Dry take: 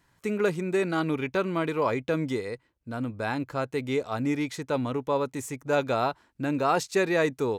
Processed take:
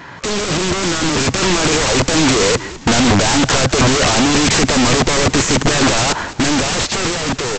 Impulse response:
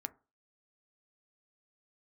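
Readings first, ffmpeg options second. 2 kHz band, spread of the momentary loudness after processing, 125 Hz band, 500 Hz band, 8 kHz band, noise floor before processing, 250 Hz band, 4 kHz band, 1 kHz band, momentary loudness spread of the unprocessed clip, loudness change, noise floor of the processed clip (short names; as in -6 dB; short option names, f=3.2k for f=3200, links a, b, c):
+15.5 dB, 5 LU, +15.0 dB, +8.5 dB, +27.5 dB, -68 dBFS, +13.0 dB, +25.5 dB, +12.0 dB, 8 LU, +14.0 dB, -32 dBFS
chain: -filter_complex "[0:a]highshelf=f=5.2k:g=-10.5,asplit=2[a][b];[b]highpass=f=720:p=1,volume=37dB,asoftclip=type=tanh:threshold=-12.5dB[c];[a][c]amix=inputs=2:normalize=0,lowpass=f=3.8k:p=1,volume=-6dB,aresample=16000,aeval=exprs='(mod(11.9*val(0)+1,2)-1)/11.9':c=same,aresample=44100,dynaudnorm=f=380:g=7:m=5.5dB,lowshelf=f=340:g=7.5,asplit=2[d][e];[e]asplit=4[f][g][h][i];[f]adelay=206,afreqshift=-99,volume=-17.5dB[j];[g]adelay=412,afreqshift=-198,volume=-24.2dB[k];[h]adelay=618,afreqshift=-297,volume=-31dB[l];[i]adelay=824,afreqshift=-396,volume=-37.7dB[m];[j][k][l][m]amix=inputs=4:normalize=0[n];[d][n]amix=inputs=2:normalize=0,volume=5.5dB"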